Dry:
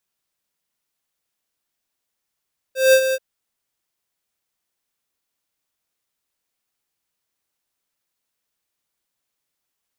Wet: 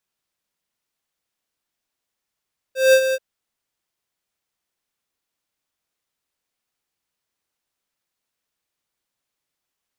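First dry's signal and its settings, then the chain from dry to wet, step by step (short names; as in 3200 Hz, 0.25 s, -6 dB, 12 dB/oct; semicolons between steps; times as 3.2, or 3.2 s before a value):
ADSR square 526 Hz, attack 0.182 s, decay 70 ms, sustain -9.5 dB, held 0.39 s, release 44 ms -10.5 dBFS
high shelf 7900 Hz -5.5 dB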